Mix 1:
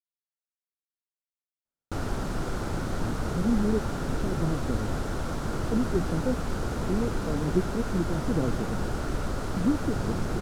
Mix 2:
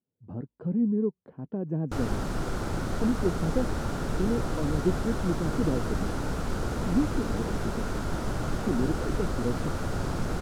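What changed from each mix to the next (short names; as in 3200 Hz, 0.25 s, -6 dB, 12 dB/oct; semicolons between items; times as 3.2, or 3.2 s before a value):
speech: entry -2.70 s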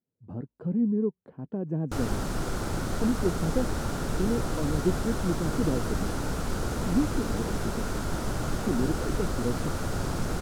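master: add high shelf 5400 Hz +7 dB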